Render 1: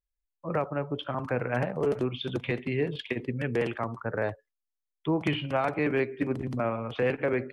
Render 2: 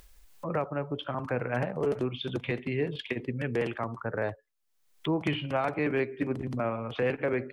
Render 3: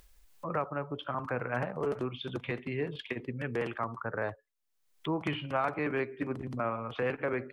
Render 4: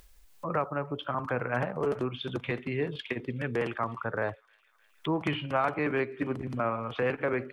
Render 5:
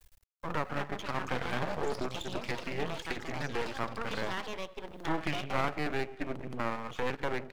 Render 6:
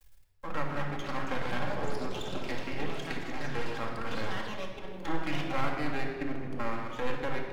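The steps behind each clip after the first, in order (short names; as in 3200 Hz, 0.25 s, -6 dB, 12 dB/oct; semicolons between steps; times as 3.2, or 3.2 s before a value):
upward compressor, threshold -29 dBFS; gain -1.5 dB
dynamic EQ 1200 Hz, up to +7 dB, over -48 dBFS, Q 1.5; gain -4.5 dB
thin delay 0.308 s, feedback 75%, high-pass 2600 Hz, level -21.5 dB; gain +3 dB
echoes that change speed 0.386 s, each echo +6 st, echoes 3, each echo -6 dB; half-wave rectifier
shoebox room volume 2200 m³, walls mixed, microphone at 2.2 m; gain -3.5 dB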